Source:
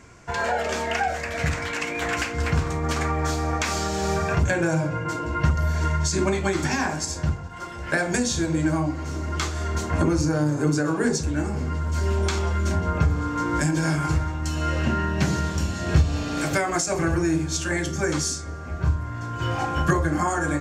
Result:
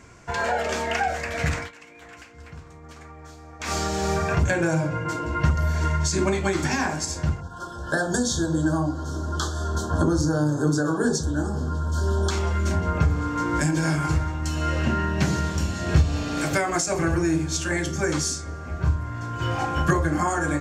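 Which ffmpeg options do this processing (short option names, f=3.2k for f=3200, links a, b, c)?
-filter_complex "[0:a]asplit=3[a][b][c];[a]afade=t=out:st=7.4:d=0.02[d];[b]asuperstop=centerf=2300:order=12:qfactor=1.7,afade=t=in:st=7.4:d=0.02,afade=t=out:st=12.3:d=0.02[e];[c]afade=t=in:st=12.3:d=0.02[f];[d][e][f]amix=inputs=3:normalize=0,asplit=3[g][h][i];[g]atrim=end=1.71,asetpts=PTS-STARTPTS,afade=t=out:st=1.58:d=0.13:silence=0.112202[j];[h]atrim=start=1.71:end=3.59,asetpts=PTS-STARTPTS,volume=-19dB[k];[i]atrim=start=3.59,asetpts=PTS-STARTPTS,afade=t=in:d=0.13:silence=0.112202[l];[j][k][l]concat=n=3:v=0:a=1"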